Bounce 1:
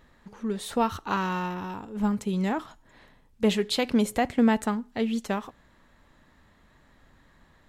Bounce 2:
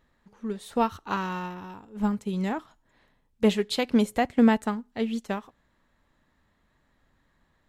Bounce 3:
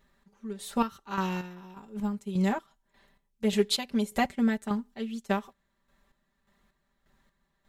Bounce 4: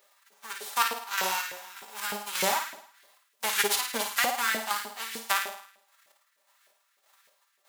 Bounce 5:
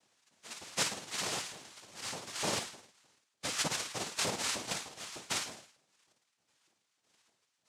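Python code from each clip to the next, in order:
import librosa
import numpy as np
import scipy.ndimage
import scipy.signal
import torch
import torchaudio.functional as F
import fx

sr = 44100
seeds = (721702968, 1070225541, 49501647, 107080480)

y1 = fx.upward_expand(x, sr, threshold_db=-41.0, expansion=1.5)
y1 = F.gain(torch.from_numpy(y1), 2.5).numpy()
y2 = fx.high_shelf(y1, sr, hz=4600.0, db=6.5)
y2 = y2 + 0.87 * np.pad(y2, (int(5.1 * sr / 1000.0), 0))[:len(y2)]
y2 = fx.chopper(y2, sr, hz=1.7, depth_pct=60, duty_pct=40)
y2 = F.gain(torch.from_numpy(y2), -2.5).numpy()
y3 = fx.envelope_flatten(y2, sr, power=0.3)
y3 = fx.room_flutter(y3, sr, wall_m=9.2, rt60_s=0.64)
y3 = fx.filter_lfo_highpass(y3, sr, shape='saw_up', hz=3.3, low_hz=460.0, high_hz=1800.0, q=2.1)
y4 = fx.noise_vocoder(y3, sr, seeds[0], bands=2)
y4 = F.gain(torch.from_numpy(y4), -7.0).numpy()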